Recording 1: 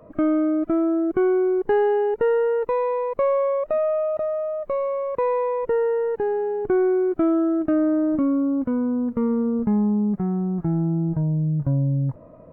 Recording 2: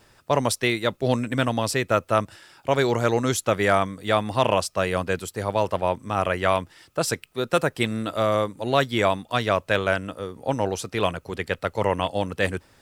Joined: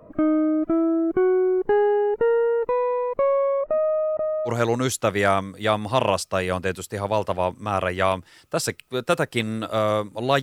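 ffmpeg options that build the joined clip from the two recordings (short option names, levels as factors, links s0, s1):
-filter_complex "[0:a]asettb=1/sr,asplit=3[s0][s1][s2];[s0]atrim=end=3.614[s3];[s1]atrim=start=3.61:end=4.51,asetpts=PTS-STARTPTS,afade=t=in:d=0.004:c=qsin,afade=t=out:st=0.896:d=0.004:c=qsin,lowpass=2000[s4];[s2]atrim=start=4.506[s5];[s3][s4]acrossfade=d=0.004:c1=hsin:c2=qsin[s6];[s6][s5]acrossfade=d=0.004:c1=qsin:c2=hsin,apad=whole_dur=10.42,atrim=end=10.42,atrim=end=4.51,asetpts=PTS-STARTPTS[s7];[1:a]atrim=start=2.89:end=8.86,asetpts=PTS-STARTPTS[s8];[s7][s8]acrossfade=d=0.06:c1=tri:c2=tri"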